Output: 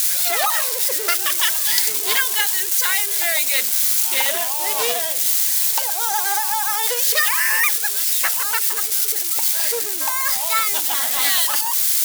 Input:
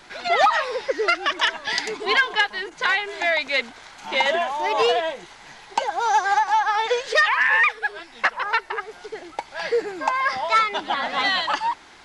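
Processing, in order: switching spikes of -16 dBFS; pre-emphasis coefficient 0.8; de-hum 108.7 Hz, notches 8; Doppler distortion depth 0.17 ms; gain +7.5 dB

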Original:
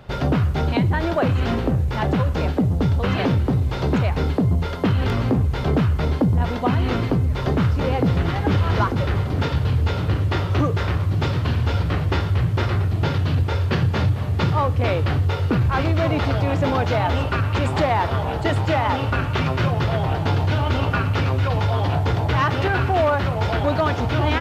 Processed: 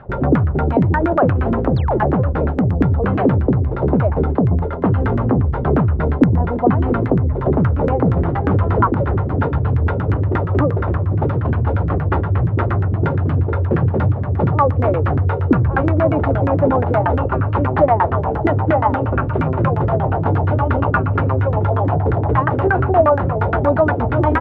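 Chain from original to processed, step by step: painted sound fall, 1.75–1.98, 300–5500 Hz -24 dBFS; wow and flutter 19 cents; LFO low-pass saw down 8.5 Hz 270–1700 Hz; gain +2.5 dB

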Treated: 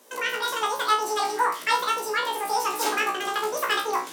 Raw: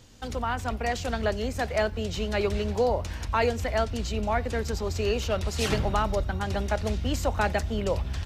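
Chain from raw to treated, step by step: on a send: flutter echo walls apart 5.6 m, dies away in 0.64 s; on the sum: speed mistake 7.5 ips tape played at 15 ips; steep high-pass 300 Hz 36 dB/oct

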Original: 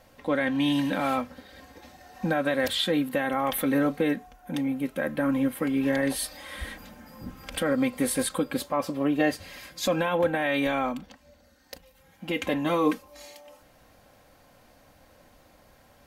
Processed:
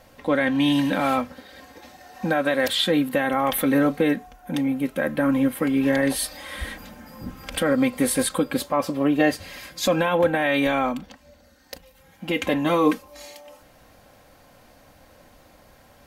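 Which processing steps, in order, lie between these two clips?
1.32–2.78 low shelf 150 Hz -8 dB; gain +4.5 dB

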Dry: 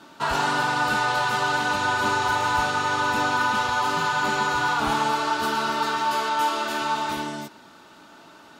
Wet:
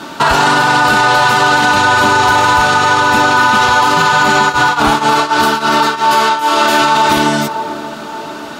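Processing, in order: narrowing echo 0.581 s, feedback 60%, band-pass 430 Hz, level -12.5 dB; 4.48–6.6 tremolo triangle 4.8 Hz -> 1.9 Hz, depth 90%; maximiser +21 dB; gain -1 dB

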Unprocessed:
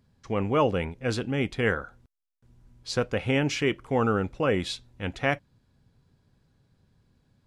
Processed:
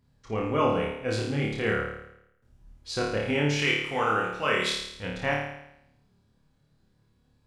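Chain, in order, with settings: flange 0.38 Hz, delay 1 ms, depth 6 ms, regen +70%; 3.59–4.7 tilt shelf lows -9 dB, about 690 Hz; flutter echo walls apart 4.7 m, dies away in 0.79 s

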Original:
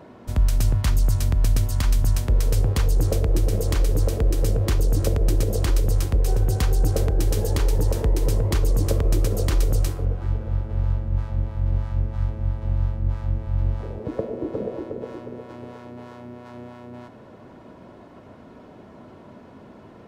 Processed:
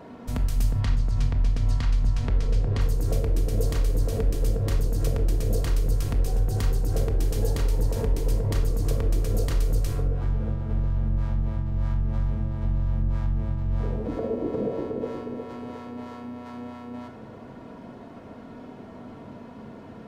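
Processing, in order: 0.8–2.81 LPF 4600 Hz 12 dB/oct; limiter -20.5 dBFS, peak gain reduction 10 dB; shoebox room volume 1000 m³, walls furnished, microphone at 1.7 m

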